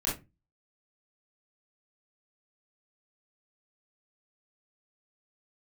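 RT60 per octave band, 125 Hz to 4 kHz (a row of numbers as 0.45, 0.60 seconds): 0.45, 0.35, 0.25, 0.20, 0.20, 0.15 seconds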